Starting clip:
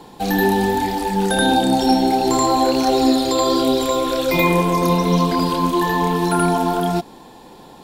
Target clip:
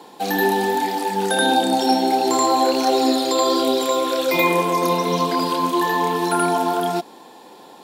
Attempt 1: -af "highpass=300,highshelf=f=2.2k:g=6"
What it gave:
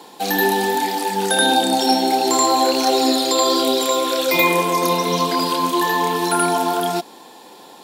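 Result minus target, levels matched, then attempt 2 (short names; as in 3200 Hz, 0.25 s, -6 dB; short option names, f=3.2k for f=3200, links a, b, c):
4000 Hz band +3.0 dB
-af "highpass=300"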